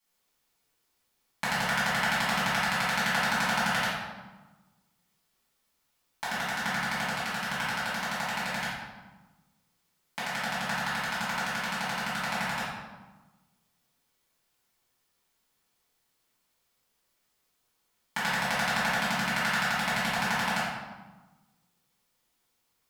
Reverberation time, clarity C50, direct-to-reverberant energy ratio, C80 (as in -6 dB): 1.2 s, -1.0 dB, -12.5 dB, 2.5 dB